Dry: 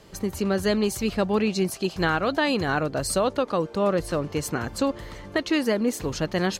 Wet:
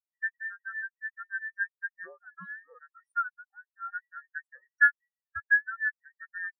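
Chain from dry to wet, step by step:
frequency inversion band by band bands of 2,000 Hz
speech leveller within 4 dB 0.5 s
0:03.35–0:03.92: low-pass filter 1,400 Hz 6 dB per octave
reverb reduction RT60 0.96 s
every bin expanded away from the loudest bin 4 to 1

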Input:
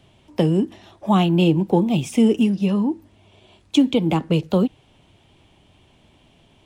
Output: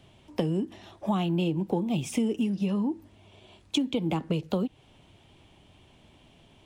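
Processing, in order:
downward compressor 4 to 1, threshold −23 dBFS, peak gain reduction 11 dB
level −2 dB

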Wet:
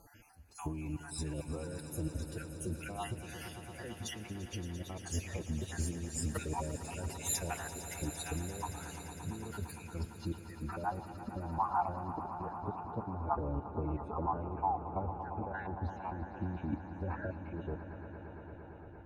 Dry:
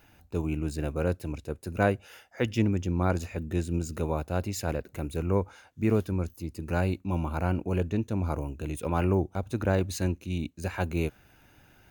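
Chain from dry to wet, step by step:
time-frequency cells dropped at random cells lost 49%
compressor whose output falls as the input rises −35 dBFS, ratio −1
phase-vocoder stretch with locked phases 1.6×
low-pass filter sweep 11,000 Hz → 930 Hz, 0:09.71–0:10.83
on a send: echo that builds up and dies away 114 ms, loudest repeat 5, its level −14.5 dB
on the sum: level −3.5 dB

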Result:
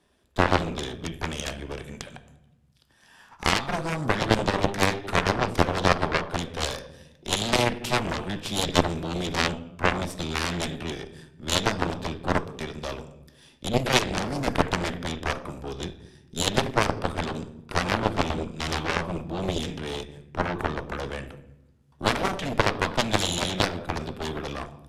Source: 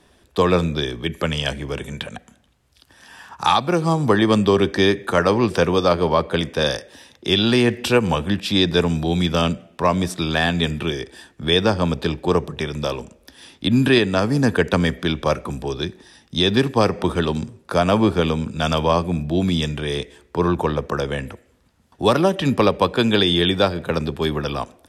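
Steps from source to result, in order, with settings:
gain on one half-wave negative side −3 dB
on a send at −7.5 dB: convolution reverb RT60 0.95 s, pre-delay 5 ms
on the sum: harmonic generator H 4 −7 dB, 7 −14 dB, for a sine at −2 dBFS
downsampling to 32,000 Hz
level −2.5 dB

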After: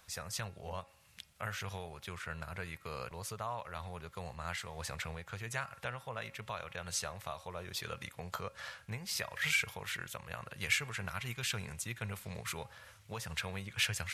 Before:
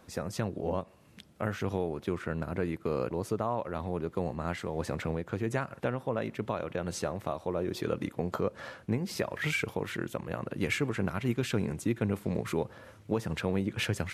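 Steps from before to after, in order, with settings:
guitar amp tone stack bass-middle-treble 10-0-10
hum removal 273.1 Hz, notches 10
level +4.5 dB

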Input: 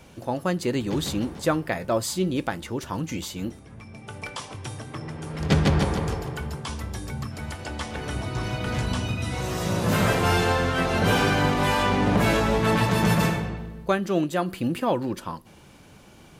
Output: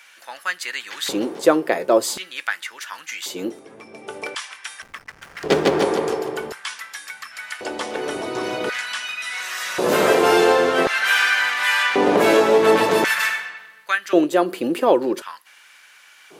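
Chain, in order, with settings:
auto-filter high-pass square 0.46 Hz 390–1,700 Hz
0:04.82–0:05.82: slack as between gear wheels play −36 dBFS
level +4.5 dB

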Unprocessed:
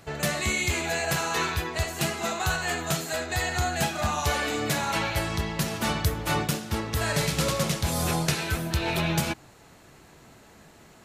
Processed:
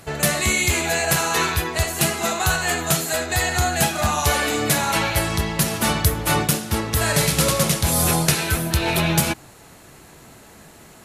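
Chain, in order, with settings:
parametric band 11,000 Hz +9 dB 0.75 octaves
level +6 dB

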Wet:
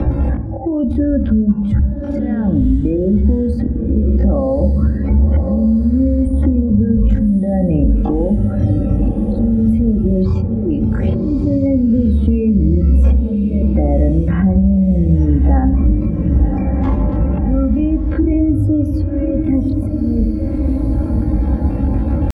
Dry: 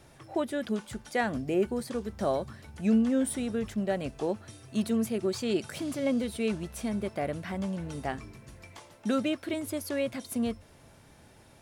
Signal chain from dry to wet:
high-pass filter 59 Hz 12 dB per octave
in parallel at −2 dB: compressor whose output falls as the input rises −33 dBFS, ratio −0.5
on the sum: gate on every frequency bin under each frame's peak −20 dB strong
spectral tilt −2.5 dB per octave
comb filter 3.7 ms, depth 73%
volume swells 739 ms
brickwall limiter −19.5 dBFS, peak gain reduction 7.5 dB
RIAA equalisation playback
tempo change 0.52×
feedback delay with all-pass diffusion 1,111 ms, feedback 45%, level −12 dB
on a send at −10 dB: convolution reverb RT60 0.70 s, pre-delay 3 ms
on the sum: multiband upward and downward compressor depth 100%
level +3.5 dB

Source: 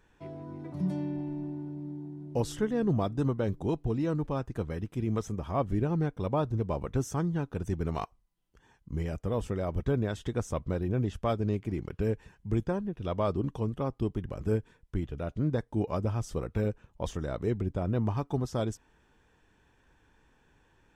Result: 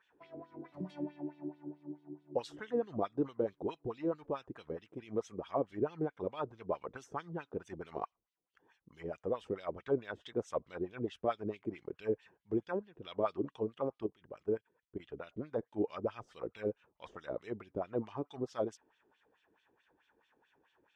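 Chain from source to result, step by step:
0:14.06–0:15.00: output level in coarse steps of 14 dB
auto-filter band-pass sine 4.6 Hz 350–3,600 Hz
level +2.5 dB

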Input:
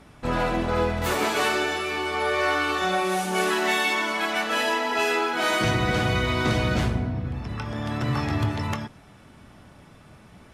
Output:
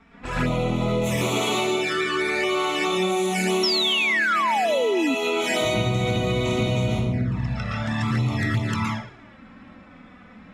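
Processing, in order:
low-pass that shuts in the quiet parts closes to 2,500 Hz, open at −21 dBFS
convolution reverb RT60 0.45 s, pre-delay 111 ms, DRR −5 dB
flanger swept by the level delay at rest 4.5 ms, full sweep at −16.5 dBFS
sound drawn into the spectrogram fall, 0:03.63–0:05.15, 250–5,600 Hz −17 dBFS
downward compressor, threshold −23 dBFS, peak gain reduction 9.5 dB
level +3.5 dB

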